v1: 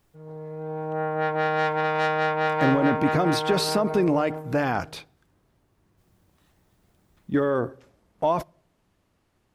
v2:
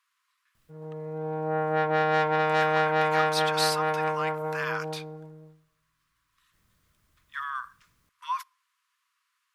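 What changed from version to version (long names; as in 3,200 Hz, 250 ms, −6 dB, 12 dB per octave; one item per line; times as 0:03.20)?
speech: add linear-phase brick-wall high-pass 960 Hz
background: entry +0.55 s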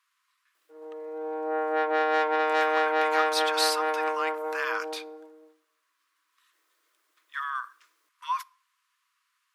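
speech: send +8.0 dB
background: add Chebyshev high-pass filter 310 Hz, order 6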